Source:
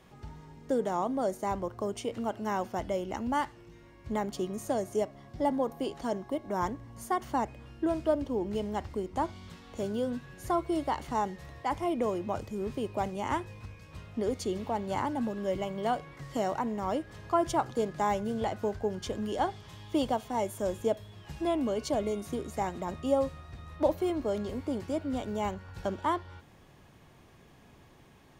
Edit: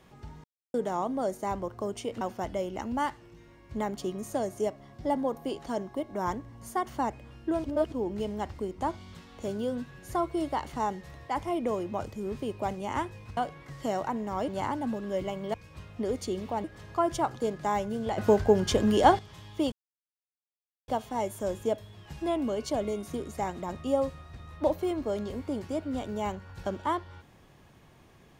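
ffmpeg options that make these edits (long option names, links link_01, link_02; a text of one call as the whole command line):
ffmpeg -i in.wav -filter_complex "[0:a]asplit=13[link_01][link_02][link_03][link_04][link_05][link_06][link_07][link_08][link_09][link_10][link_11][link_12][link_13];[link_01]atrim=end=0.44,asetpts=PTS-STARTPTS,afade=type=out:start_time=0.436:duration=0.004:curve=hsin[link_14];[link_02]atrim=start=0.44:end=0.74,asetpts=PTS-STARTPTS,volume=0[link_15];[link_03]atrim=start=0.74:end=2.212,asetpts=PTS-STARTPTS,afade=type=in:duration=0.004:curve=hsin[link_16];[link_04]atrim=start=2.558:end=7.992[link_17];[link_05]atrim=start=7.988:end=8.272,asetpts=PTS-STARTPTS,areverse[link_18];[link_06]atrim=start=8.268:end=13.722[link_19];[link_07]atrim=start=15.878:end=16.992[link_20];[link_08]atrim=start=14.818:end=15.882[link_21];[link_09]atrim=start=13.718:end=14.822[link_22];[link_10]atrim=start=16.988:end=18.532[link_23];[link_11]atrim=start=18.528:end=19.542,asetpts=PTS-STARTPTS,volume=10dB[link_24];[link_12]atrim=start=19.538:end=20.07,asetpts=PTS-STARTPTS,afade=type=out:start_time=0.528:duration=0.004:curve=hsin,apad=pad_dur=1.16[link_25];[link_13]atrim=start=20.07,asetpts=PTS-STARTPTS,afade=type=in:duration=0.004:curve=hsin[link_26];[link_14][link_15][link_16]concat=n=3:v=0:a=1[link_27];[link_27][link_17]acrossfade=duration=0.004:curve1=hsin:curve2=hsin[link_28];[link_28][link_18]acrossfade=duration=0.004:curve1=hsin:curve2=hsin[link_29];[link_29][link_19]acrossfade=duration=0.004:curve1=hsin:curve2=hsin[link_30];[link_30][link_20]acrossfade=duration=0.004:curve1=hsin:curve2=hsin[link_31];[link_31][link_21]acrossfade=duration=0.004:curve1=hsin:curve2=hsin[link_32];[link_32][link_22]acrossfade=duration=0.004:curve1=hsin:curve2=hsin[link_33];[link_33][link_23]acrossfade=duration=0.004:curve1=hsin:curve2=hsin[link_34];[link_34][link_24]acrossfade=duration=0.004:curve1=hsin:curve2=hsin[link_35];[link_25][link_26]concat=n=2:v=0:a=1[link_36];[link_35][link_36]acrossfade=duration=0.004:curve1=hsin:curve2=hsin" out.wav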